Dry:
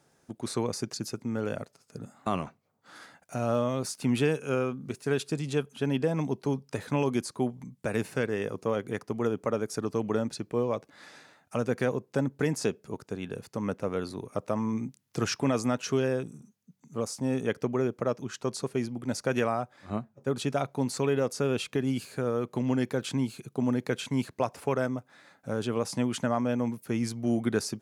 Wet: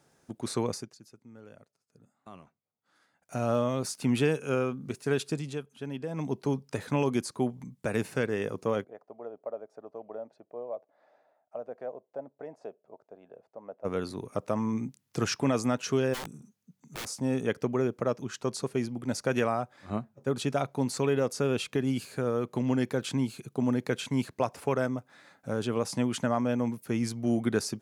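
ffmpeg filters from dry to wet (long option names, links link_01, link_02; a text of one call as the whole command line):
ffmpeg -i in.wav -filter_complex "[0:a]asplit=3[link_01][link_02][link_03];[link_01]afade=type=out:start_time=8.83:duration=0.02[link_04];[link_02]bandpass=frequency=650:width_type=q:width=5.2,afade=type=in:start_time=8.83:duration=0.02,afade=type=out:start_time=13.84:duration=0.02[link_05];[link_03]afade=type=in:start_time=13.84:duration=0.02[link_06];[link_04][link_05][link_06]amix=inputs=3:normalize=0,asplit=3[link_07][link_08][link_09];[link_07]afade=type=out:start_time=16.13:duration=0.02[link_10];[link_08]aeval=exprs='(mod(39.8*val(0)+1,2)-1)/39.8':channel_layout=same,afade=type=in:start_time=16.13:duration=0.02,afade=type=out:start_time=17.05:duration=0.02[link_11];[link_09]afade=type=in:start_time=17.05:duration=0.02[link_12];[link_10][link_11][link_12]amix=inputs=3:normalize=0,asplit=5[link_13][link_14][link_15][link_16][link_17];[link_13]atrim=end=0.98,asetpts=PTS-STARTPTS,afade=type=out:start_time=0.72:duration=0.26:curve=qua:silence=0.112202[link_18];[link_14]atrim=start=0.98:end=3.1,asetpts=PTS-STARTPTS,volume=-19dB[link_19];[link_15]atrim=start=3.1:end=5.6,asetpts=PTS-STARTPTS,afade=type=in:duration=0.26:curve=qua:silence=0.112202,afade=type=out:start_time=2.2:duration=0.3:silence=0.354813[link_20];[link_16]atrim=start=5.6:end=6.07,asetpts=PTS-STARTPTS,volume=-9dB[link_21];[link_17]atrim=start=6.07,asetpts=PTS-STARTPTS,afade=type=in:duration=0.3:silence=0.354813[link_22];[link_18][link_19][link_20][link_21][link_22]concat=n=5:v=0:a=1" out.wav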